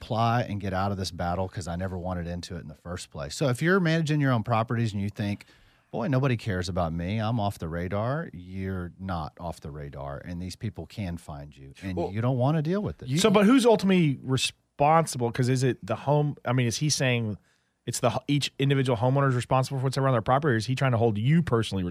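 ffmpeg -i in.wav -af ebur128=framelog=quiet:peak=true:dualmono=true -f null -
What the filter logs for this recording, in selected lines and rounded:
Integrated loudness:
  I:         -23.3 LUFS
  Threshold: -33.8 LUFS
Loudness range:
  LRA:        10.4 LU
  Threshold: -43.9 LUFS
  LRA low:   -30.7 LUFS
  LRA high:  -20.3 LUFS
True peak:
  Peak:       -5.8 dBFS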